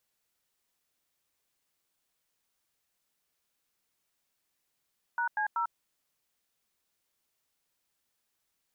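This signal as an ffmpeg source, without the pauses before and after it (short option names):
-f lavfi -i "aevalsrc='0.0316*clip(min(mod(t,0.19),0.097-mod(t,0.19))/0.002,0,1)*(eq(floor(t/0.19),0)*(sin(2*PI*941*mod(t,0.19))+sin(2*PI*1477*mod(t,0.19)))+eq(floor(t/0.19),1)*(sin(2*PI*852*mod(t,0.19))+sin(2*PI*1633*mod(t,0.19)))+eq(floor(t/0.19),2)*(sin(2*PI*941*mod(t,0.19))+sin(2*PI*1336*mod(t,0.19))))':d=0.57:s=44100"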